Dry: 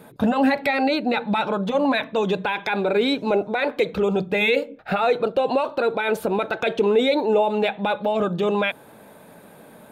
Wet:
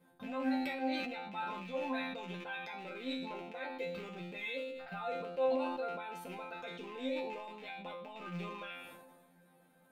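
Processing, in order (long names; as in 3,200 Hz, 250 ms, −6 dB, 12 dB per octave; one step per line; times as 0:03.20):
loose part that buzzes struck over −30 dBFS, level −18 dBFS
resonators tuned to a chord F3 fifth, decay 0.45 s
level that may fall only so fast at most 36 dB per second
level −3.5 dB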